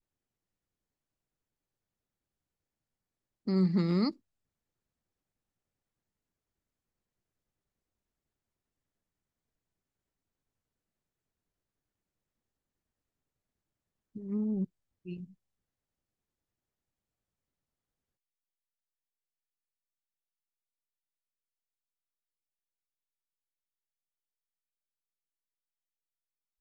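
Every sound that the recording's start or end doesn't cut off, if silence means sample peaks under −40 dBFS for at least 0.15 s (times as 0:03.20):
0:03.47–0:04.11
0:14.16–0:14.65
0:15.06–0:15.24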